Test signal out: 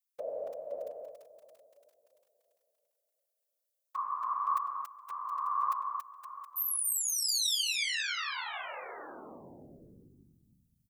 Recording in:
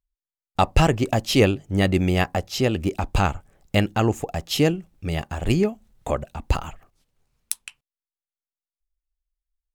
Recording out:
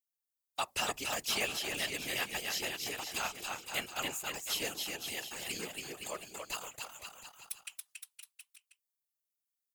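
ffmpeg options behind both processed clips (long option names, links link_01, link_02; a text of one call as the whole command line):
ffmpeg -i in.wav -filter_complex "[0:a]aderivative,acrossover=split=3200[link_01][link_02];[link_02]acompressor=threshold=-35dB:ratio=4:attack=1:release=60[link_03];[link_01][link_03]amix=inputs=2:normalize=0,asplit=2[link_04][link_05];[link_05]aecho=0:1:280|518|720.3|892.3|1038:0.631|0.398|0.251|0.158|0.1[link_06];[link_04][link_06]amix=inputs=2:normalize=0,afftfilt=real='hypot(re,im)*cos(2*PI*random(0))':imag='hypot(re,im)*sin(2*PI*random(1))':win_size=512:overlap=0.75,volume=7.5dB" out.wav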